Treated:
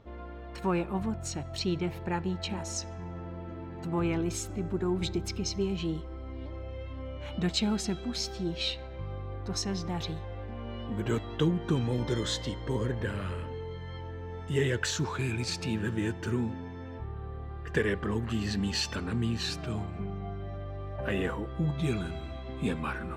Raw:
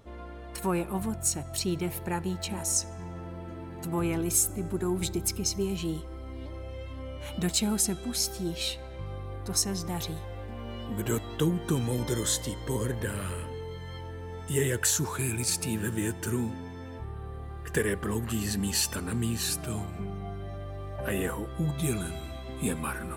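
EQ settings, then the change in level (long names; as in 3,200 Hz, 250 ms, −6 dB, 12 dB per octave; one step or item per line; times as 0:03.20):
dynamic equaliser 3,800 Hz, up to +5 dB, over −42 dBFS, Q 0.76
high-frequency loss of the air 180 metres
high-shelf EQ 11,000 Hz +9.5 dB
0.0 dB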